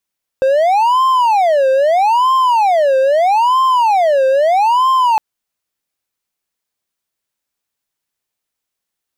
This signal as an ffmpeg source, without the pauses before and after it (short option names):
-f lavfi -i "aevalsrc='0.447*(1-4*abs(mod((788.5*t-261.5/(2*PI*0.78)*sin(2*PI*0.78*t))+0.25,1)-0.5))':d=4.76:s=44100"